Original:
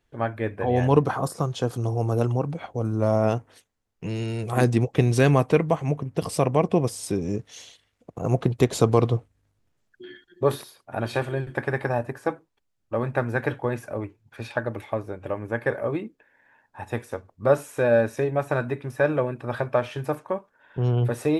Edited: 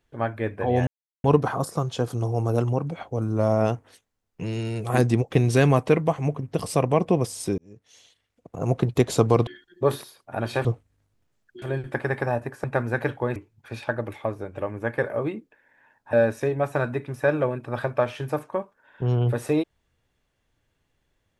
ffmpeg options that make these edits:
ffmpeg -i in.wav -filter_complex "[0:a]asplit=9[link_01][link_02][link_03][link_04][link_05][link_06][link_07][link_08][link_09];[link_01]atrim=end=0.87,asetpts=PTS-STARTPTS,afade=type=out:start_time=0.866:duration=0.004:curve=hsin,apad=pad_dur=0.37[link_10];[link_02]atrim=start=0.87:end=7.21,asetpts=PTS-STARTPTS,afade=type=in:duration=0.004:curve=hsin,afade=type=out:start_time=6.336:duration=0.004:curve=hsin[link_11];[link_03]atrim=start=7.21:end=9.102,asetpts=PTS-STARTPTS,afade=type=in:duration=1.26[link_12];[link_04]atrim=start=10.068:end=11.252[link_13];[link_05]atrim=start=9.098:end=10.072[link_14];[link_06]atrim=start=11.248:end=12.272[link_15];[link_07]atrim=start=13.058:end=13.782[link_16];[link_08]atrim=start=14.038:end=16.812[link_17];[link_09]atrim=start=17.888[link_18];[link_10][link_11][link_12]concat=n=3:v=0:a=1[link_19];[link_19][link_13]acrossfade=duration=0.004:curve1=hsin:curve2=hsin[link_20];[link_20][link_14]acrossfade=duration=0.004:curve1=hsin:curve2=hsin[link_21];[link_21][link_15]acrossfade=duration=0.004:curve1=hsin:curve2=hsin[link_22];[link_22][link_16]acrossfade=duration=0.004:curve1=hsin:curve2=hsin[link_23];[link_23][link_17]acrossfade=duration=0.004:curve1=hsin:curve2=hsin[link_24];[link_24][link_18]acrossfade=duration=0.004:curve1=hsin:curve2=hsin" out.wav

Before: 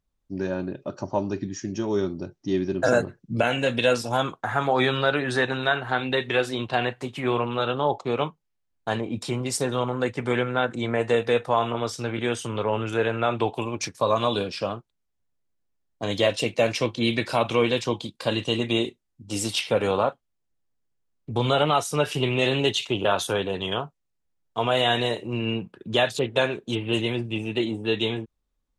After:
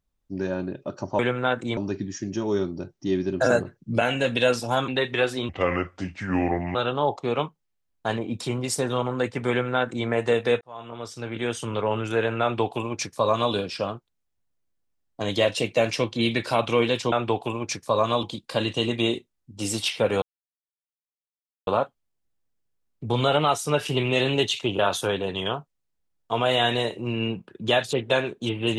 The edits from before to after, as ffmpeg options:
ffmpeg -i in.wav -filter_complex "[0:a]asplit=10[link_01][link_02][link_03][link_04][link_05][link_06][link_07][link_08][link_09][link_10];[link_01]atrim=end=1.192[link_11];[link_02]atrim=start=10.308:end=10.892[link_12];[link_03]atrim=start=1.188:end=4.302[link_13];[link_04]atrim=start=6.038:end=6.654[link_14];[link_05]atrim=start=6.65:end=7.57,asetpts=PTS-STARTPTS,asetrate=32193,aresample=44100,atrim=end_sample=55578,asetpts=PTS-STARTPTS[link_15];[link_06]atrim=start=7.566:end=11.43,asetpts=PTS-STARTPTS,afade=type=out:start_time=3.86:duration=0.004:curve=hsin[link_16];[link_07]atrim=start=11.43:end=17.942,asetpts=PTS-STARTPTS,afade=type=in:duration=1.04[link_17];[link_08]atrim=start=13.238:end=14.352[link_18];[link_09]atrim=start=17.938:end=19.93,asetpts=PTS-STARTPTS,afade=type=out:start_time=1.988:duration=0.004:curve=hsin,apad=pad_dur=1.45[link_19];[link_10]atrim=start=19.93,asetpts=PTS-STARTPTS,afade=type=in:duration=0.004:curve=hsin[link_20];[link_11][link_12]acrossfade=duration=0.004:curve1=hsin:curve2=hsin[link_21];[link_21][link_13]acrossfade=duration=0.004:curve1=hsin:curve2=hsin[link_22];[link_22][link_14]acrossfade=duration=0.004:curve1=hsin:curve2=hsin[link_23];[link_23][link_15]acrossfade=duration=0.004:curve1=hsin:curve2=hsin[link_24];[link_16][link_17]concat=n=2:v=0:a=1[link_25];[link_24][link_25]acrossfade=duration=0.004:curve1=hsin:curve2=hsin[link_26];[link_26][link_18]acrossfade=duration=0.004:curve1=hsin:curve2=hsin[link_27];[link_19][link_20]concat=n=2:v=0:a=1[link_28];[link_27][link_28]acrossfade=duration=0.004:curve1=hsin:curve2=hsin" out.wav

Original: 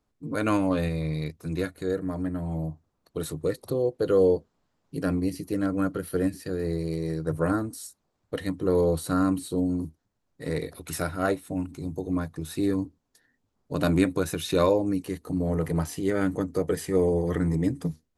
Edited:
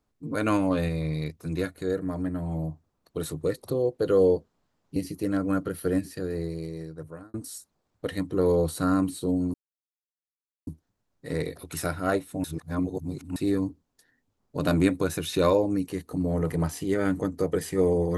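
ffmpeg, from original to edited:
ffmpeg -i in.wav -filter_complex "[0:a]asplit=6[link_01][link_02][link_03][link_04][link_05][link_06];[link_01]atrim=end=4.962[link_07];[link_02]atrim=start=5.248:end=7.63,asetpts=PTS-STARTPTS,afade=type=out:start_time=1.132:duration=1.25[link_08];[link_03]atrim=start=7.63:end=9.83,asetpts=PTS-STARTPTS,afade=type=in:duration=0.004:curve=hsin,afade=type=out:start_time=2.196:duration=0.004:curve=hsin,apad=pad_dur=1.13[link_09];[link_04]atrim=start=9.83:end=11.602,asetpts=PTS-STARTPTS,afade=type=in:duration=0.004:curve=hsin[link_10];[link_05]atrim=start=11.598:end=12.522,asetpts=PTS-STARTPTS,areverse[link_11];[link_06]atrim=start=12.518[link_12];[link_08][link_09][link_10]concat=n=3:v=0:a=1[link_13];[link_07][link_13]acrossfade=duration=0.004:curve1=hsin:curve2=hsin[link_14];[link_14][link_11]acrossfade=duration=0.004:curve1=hsin:curve2=hsin[link_15];[link_15][link_12]acrossfade=duration=0.004:curve1=hsin:curve2=hsin" out.wav

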